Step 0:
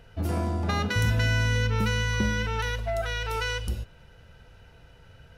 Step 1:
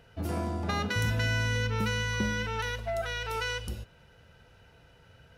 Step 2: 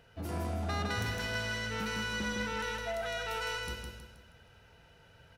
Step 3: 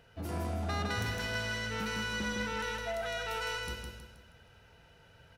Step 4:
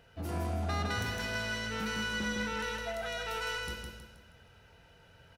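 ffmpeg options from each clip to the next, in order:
ffmpeg -i in.wav -af "highpass=frequency=94:poles=1,volume=-2.5dB" out.wav
ffmpeg -i in.wav -filter_complex "[0:a]lowshelf=frequency=420:gain=-3,asoftclip=type=tanh:threshold=-28dB,asplit=2[link_01][link_02];[link_02]aecho=0:1:159|318|477|636|795:0.668|0.274|0.112|0.0461|0.0189[link_03];[link_01][link_03]amix=inputs=2:normalize=0,volume=-2dB" out.wav
ffmpeg -i in.wav -af anull out.wav
ffmpeg -i in.wav -filter_complex "[0:a]asplit=2[link_01][link_02];[link_02]adelay=23,volume=-11.5dB[link_03];[link_01][link_03]amix=inputs=2:normalize=0" out.wav

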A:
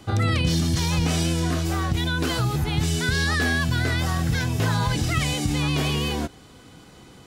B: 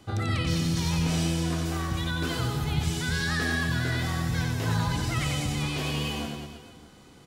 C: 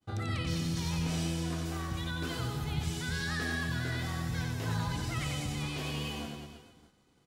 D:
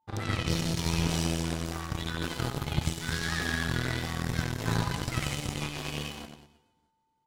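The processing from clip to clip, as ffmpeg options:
ffmpeg -i in.wav -af "aecho=1:1:90|193.5|312.5|449.4|606.8:0.631|0.398|0.251|0.158|0.1,volume=-7dB" out.wav
ffmpeg -i in.wav -af "agate=range=-33dB:threshold=-44dB:ratio=3:detection=peak,volume=-6.5dB" out.wav
ffmpeg -i in.wav -af "aeval=exprs='val(0)+0.00112*sin(2*PI*890*n/s)':channel_layout=same,aeval=exprs='0.0841*(cos(1*acos(clip(val(0)/0.0841,-1,1)))-cos(1*PI/2))+0.015*(cos(3*acos(clip(val(0)/0.0841,-1,1)))-cos(3*PI/2))+0.0106*(cos(4*acos(clip(val(0)/0.0841,-1,1)))-cos(4*PI/2))+0.00422*(cos(6*acos(clip(val(0)/0.0841,-1,1)))-cos(6*PI/2))+0.00473*(cos(7*acos(clip(val(0)/0.0841,-1,1)))-cos(7*PI/2))':channel_layout=same,volume=7.5dB" out.wav

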